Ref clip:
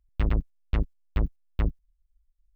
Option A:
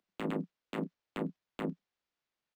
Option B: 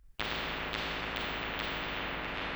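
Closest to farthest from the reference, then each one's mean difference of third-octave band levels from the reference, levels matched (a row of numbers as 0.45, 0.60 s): A, B; 7.0, 16.0 dB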